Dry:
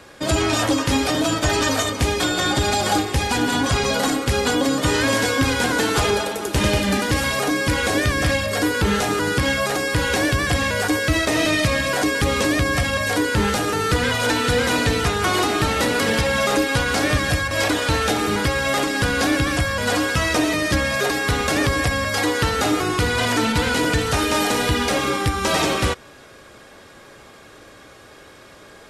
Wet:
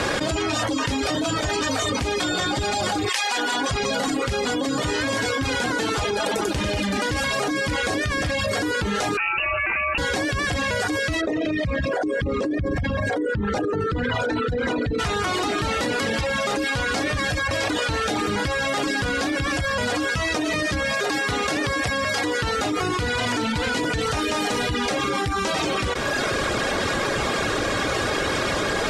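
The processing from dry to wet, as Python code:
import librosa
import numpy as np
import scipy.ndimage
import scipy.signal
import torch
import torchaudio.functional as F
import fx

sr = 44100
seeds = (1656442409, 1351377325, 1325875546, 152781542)

y = fx.highpass(x, sr, hz=fx.line((3.08, 1300.0), (3.68, 330.0)), slope=12, at=(3.08, 3.68), fade=0.02)
y = fx.freq_invert(y, sr, carrier_hz=2800, at=(9.17, 9.98))
y = fx.envelope_sharpen(y, sr, power=2.0, at=(11.2, 14.98), fade=0.02)
y = fx.highpass(y, sr, hz=160.0, slope=6, at=(20.93, 22.24))
y = fx.dereverb_blind(y, sr, rt60_s=0.56)
y = scipy.signal.sosfilt(scipy.signal.butter(2, 8100.0, 'lowpass', fs=sr, output='sos'), y)
y = fx.env_flatten(y, sr, amount_pct=100)
y = F.gain(torch.from_numpy(y), -8.5).numpy()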